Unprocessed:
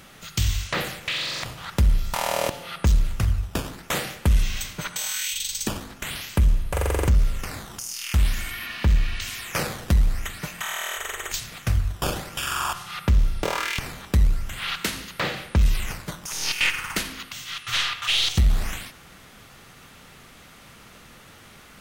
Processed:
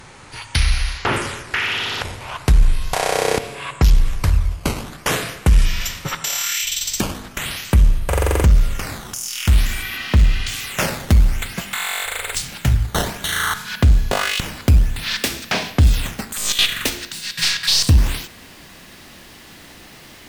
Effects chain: gliding tape speed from 67% -> 148%; trim +6 dB

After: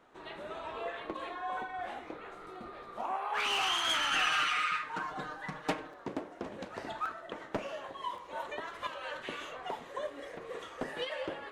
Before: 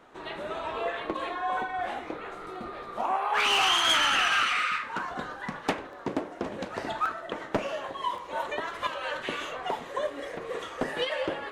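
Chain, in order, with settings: 4.11–5.94 s: comb 6.5 ms, depth 98%; trim -7.5 dB

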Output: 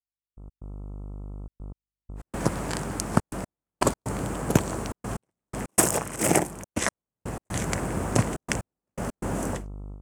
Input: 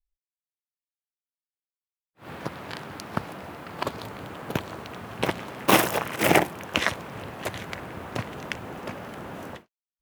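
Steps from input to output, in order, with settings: treble shelf 9.6 kHz -8.5 dB; mains buzz 50 Hz, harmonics 27, -48 dBFS -7 dB/octave; FFT filter 210 Hz 0 dB, 3.8 kHz -10 dB, 8.2 kHz +15 dB, 15 kHz -1 dB; trance gate "...x.xxxxxxx.x" 122 bpm -60 dB; level rider gain up to 12 dB; trim -1 dB

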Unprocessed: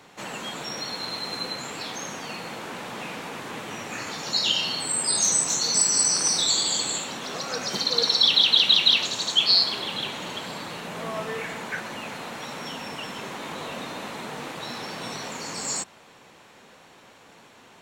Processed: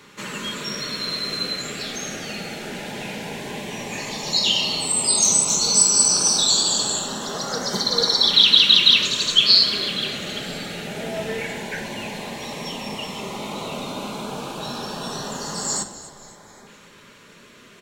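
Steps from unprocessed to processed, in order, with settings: LFO notch saw up 0.12 Hz 700–2800 Hz; on a send: frequency-shifting echo 262 ms, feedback 48%, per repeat -92 Hz, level -16 dB; on the sum: simulated room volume 2000 m³, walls furnished, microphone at 1.3 m; trim +4 dB

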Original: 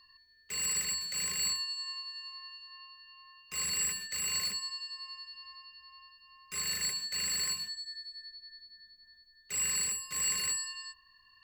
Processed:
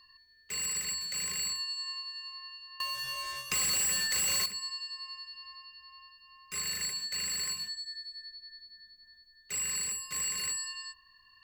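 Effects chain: 2.80–4.46 s: waveshaping leveller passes 5; compression 3:1, threshold -33 dBFS, peak gain reduction 7.5 dB; trim +1.5 dB

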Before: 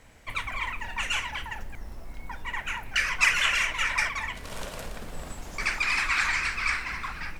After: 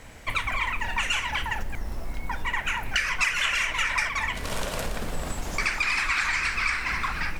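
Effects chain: compression 4:1, threshold -32 dBFS, peak gain reduction 13 dB; trim +8.5 dB

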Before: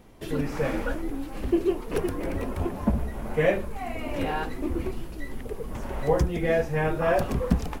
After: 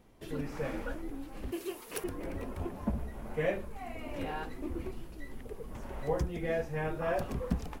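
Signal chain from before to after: 1.52–2.04 s: tilt EQ +4 dB/octave; trim -9 dB

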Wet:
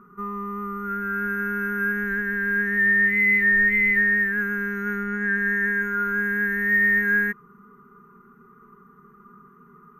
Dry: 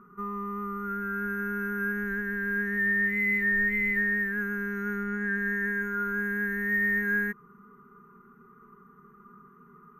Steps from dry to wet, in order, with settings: dynamic bell 2.3 kHz, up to +5 dB, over -39 dBFS, Q 0.86; trim +3 dB

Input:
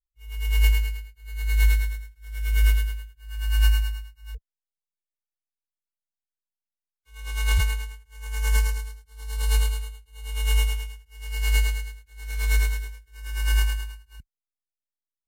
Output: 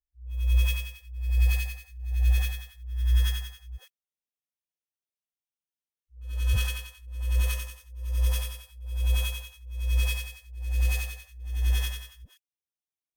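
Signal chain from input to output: comb filter that takes the minimum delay 0.38 ms; tape speed +16%; phase dispersion highs, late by 133 ms, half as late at 480 Hz; trim -3 dB

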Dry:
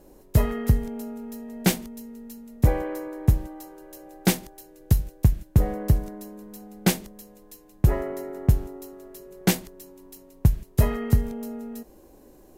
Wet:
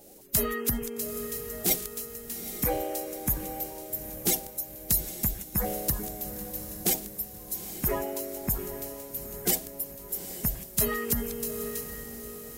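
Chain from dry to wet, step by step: coarse spectral quantiser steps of 30 dB; treble shelf 5.7 kHz +8.5 dB; peak limiter -15 dBFS, peak gain reduction 10.5 dB; tilt EQ +2 dB/octave; on a send: echo that smears into a reverb 837 ms, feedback 51%, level -10.5 dB

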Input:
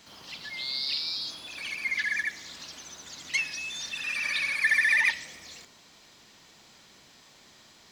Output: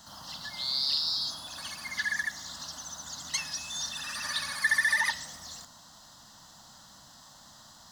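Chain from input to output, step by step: static phaser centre 980 Hz, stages 4; trim +6 dB

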